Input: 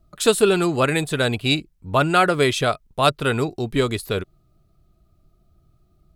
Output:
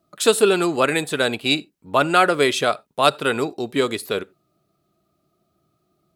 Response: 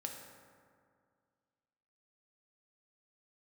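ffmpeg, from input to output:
-filter_complex "[0:a]highpass=240,asplit=2[s0][s1];[1:a]atrim=start_sample=2205,atrim=end_sample=4410[s2];[s1][s2]afir=irnorm=-1:irlink=0,volume=0.237[s3];[s0][s3]amix=inputs=2:normalize=0"

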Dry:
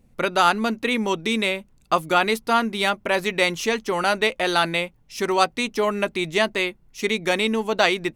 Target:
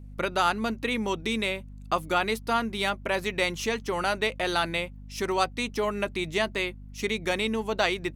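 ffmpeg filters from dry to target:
-filter_complex "[0:a]asplit=2[s0][s1];[s1]acompressor=threshold=0.0501:ratio=6,volume=0.708[s2];[s0][s2]amix=inputs=2:normalize=0,aeval=exprs='val(0)+0.02*(sin(2*PI*50*n/s)+sin(2*PI*2*50*n/s)/2+sin(2*PI*3*50*n/s)/3+sin(2*PI*4*50*n/s)/4+sin(2*PI*5*50*n/s)/5)':c=same,volume=0.398"

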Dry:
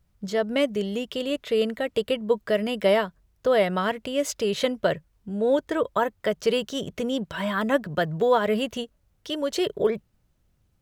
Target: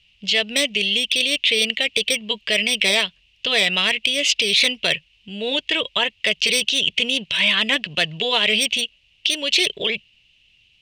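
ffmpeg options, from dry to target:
-af "lowpass=f=2800:t=q:w=8.1,aexciter=amount=13:drive=6.1:freq=2200,afftfilt=real='re*lt(hypot(re,im),1.41)':imag='im*lt(hypot(re,im),1.41)':win_size=1024:overlap=0.75,volume=0.668"

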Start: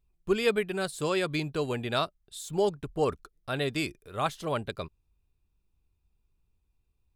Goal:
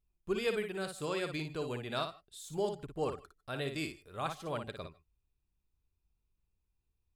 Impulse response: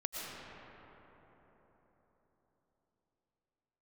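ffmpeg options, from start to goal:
-filter_complex "[0:a]asplit=2[s0][s1];[1:a]atrim=start_sample=2205,atrim=end_sample=4410,adelay=57[s2];[s1][s2]afir=irnorm=-1:irlink=0,volume=0.631[s3];[s0][s3]amix=inputs=2:normalize=0,volume=0.398"

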